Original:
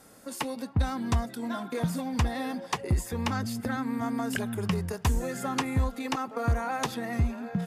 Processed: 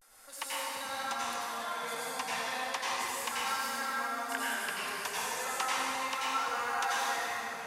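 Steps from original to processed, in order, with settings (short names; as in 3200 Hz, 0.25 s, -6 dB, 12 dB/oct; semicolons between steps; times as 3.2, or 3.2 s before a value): HPF 940 Hz 12 dB/oct; vibrato 0.35 Hz 53 cents; plate-style reverb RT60 3.1 s, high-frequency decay 0.75×, pre-delay 75 ms, DRR -8.5 dB; gain -5 dB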